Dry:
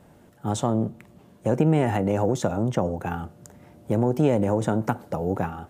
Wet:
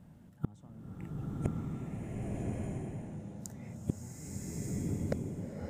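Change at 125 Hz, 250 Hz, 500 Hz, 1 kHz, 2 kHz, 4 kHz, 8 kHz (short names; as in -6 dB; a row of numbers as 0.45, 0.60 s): -11.0, -14.0, -20.0, -23.5, -18.0, -17.5, -8.0 dB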